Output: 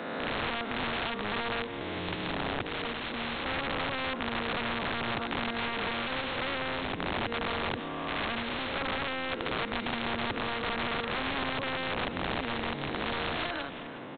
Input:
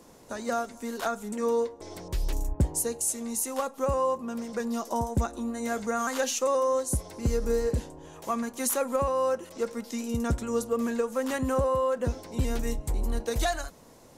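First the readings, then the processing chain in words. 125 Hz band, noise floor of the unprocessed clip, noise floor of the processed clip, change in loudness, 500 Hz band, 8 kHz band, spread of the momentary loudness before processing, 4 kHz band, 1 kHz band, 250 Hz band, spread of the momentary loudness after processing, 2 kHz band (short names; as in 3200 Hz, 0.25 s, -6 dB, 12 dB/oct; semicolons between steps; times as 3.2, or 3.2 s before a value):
-7.0 dB, -52 dBFS, -38 dBFS, -3.0 dB, -8.0 dB, under -40 dB, 8 LU, +8.5 dB, -1.0 dB, -4.0 dB, 3 LU, +8.0 dB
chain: spectral swells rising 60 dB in 1.41 s; HPF 120 Hz 24 dB/oct; bell 280 Hz +10 dB 0.77 oct; in parallel at +2 dB: limiter -17 dBFS, peak gain reduction 9 dB; on the sum: compressor 8:1, threshold -19 dBFS, peak gain reduction 9.5 dB; wrapped overs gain 17 dB; air absorption 170 m; echo 0.362 s -21.5 dB; downsampling 8000 Hz; spectral compressor 2:1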